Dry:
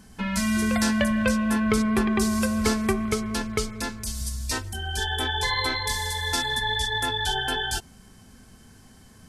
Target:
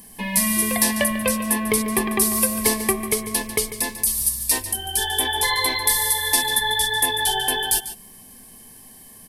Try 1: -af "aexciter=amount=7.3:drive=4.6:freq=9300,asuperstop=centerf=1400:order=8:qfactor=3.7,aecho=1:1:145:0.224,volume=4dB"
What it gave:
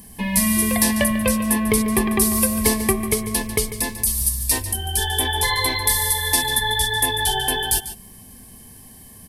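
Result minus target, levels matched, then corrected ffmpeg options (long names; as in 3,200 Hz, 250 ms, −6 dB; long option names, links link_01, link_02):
125 Hz band +7.5 dB
-af "aexciter=amount=7.3:drive=4.6:freq=9300,asuperstop=centerf=1400:order=8:qfactor=3.7,equalizer=frequency=66:width_type=o:width=2.7:gain=-12,aecho=1:1:145:0.224,volume=4dB"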